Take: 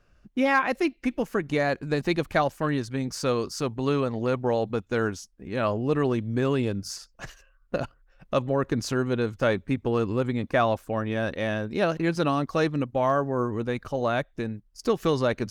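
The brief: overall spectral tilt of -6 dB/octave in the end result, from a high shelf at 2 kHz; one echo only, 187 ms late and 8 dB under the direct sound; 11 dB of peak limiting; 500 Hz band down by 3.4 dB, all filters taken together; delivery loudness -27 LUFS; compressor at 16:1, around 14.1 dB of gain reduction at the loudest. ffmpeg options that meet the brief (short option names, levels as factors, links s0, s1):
-af "equalizer=f=500:t=o:g=-3.5,highshelf=f=2000:g=-8.5,acompressor=threshold=0.0178:ratio=16,alimiter=level_in=3.35:limit=0.0631:level=0:latency=1,volume=0.299,aecho=1:1:187:0.398,volume=7.5"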